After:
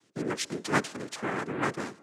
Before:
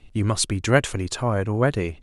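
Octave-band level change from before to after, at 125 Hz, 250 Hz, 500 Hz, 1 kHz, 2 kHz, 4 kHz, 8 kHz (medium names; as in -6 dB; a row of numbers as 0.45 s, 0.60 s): -17.0 dB, -7.5 dB, -10.5 dB, -4.5 dB, -5.5 dB, -8.5 dB, -10.5 dB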